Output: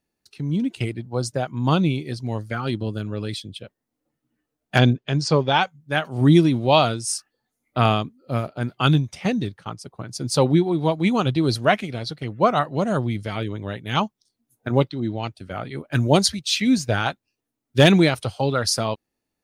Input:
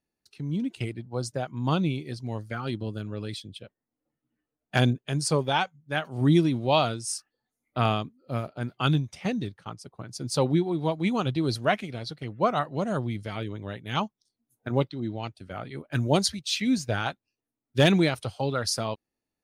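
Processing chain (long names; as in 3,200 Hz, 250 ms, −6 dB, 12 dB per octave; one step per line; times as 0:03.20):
0:04.78–0:05.63: low-pass filter 5,900 Hz 24 dB per octave
level +6 dB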